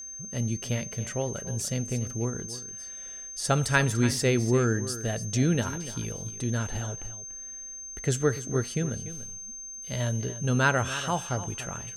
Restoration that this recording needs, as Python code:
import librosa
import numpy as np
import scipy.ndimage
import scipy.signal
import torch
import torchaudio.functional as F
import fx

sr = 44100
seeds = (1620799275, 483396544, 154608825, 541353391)

y = fx.notch(x, sr, hz=6300.0, q=30.0)
y = fx.fix_echo_inverse(y, sr, delay_ms=291, level_db=-13.5)